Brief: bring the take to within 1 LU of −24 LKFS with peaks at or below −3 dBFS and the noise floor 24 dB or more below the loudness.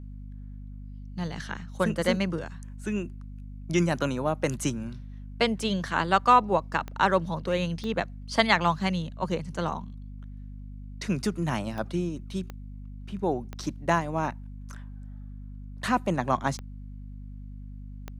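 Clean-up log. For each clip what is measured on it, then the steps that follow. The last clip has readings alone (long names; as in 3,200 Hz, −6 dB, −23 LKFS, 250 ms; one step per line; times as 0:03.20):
number of clicks 7; mains hum 50 Hz; hum harmonics up to 250 Hz; level of the hum −38 dBFS; integrated loudness −28.0 LKFS; sample peak −4.0 dBFS; target loudness −24.0 LKFS
→ click removal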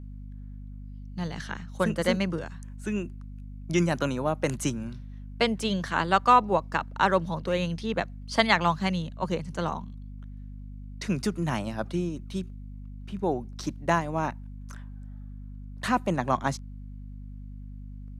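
number of clicks 0; mains hum 50 Hz; hum harmonics up to 250 Hz; level of the hum −38 dBFS
→ mains-hum notches 50/100/150/200/250 Hz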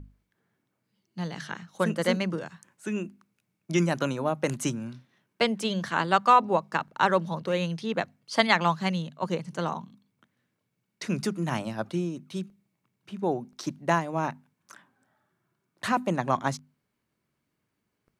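mains hum none found; integrated loudness −28.0 LKFS; sample peak −4.0 dBFS; target loudness −24.0 LKFS
→ level +4 dB
brickwall limiter −3 dBFS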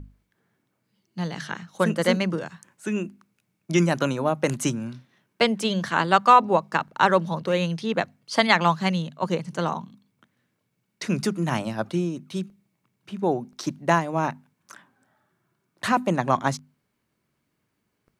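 integrated loudness −24.0 LKFS; sample peak −3.0 dBFS; background noise floor −76 dBFS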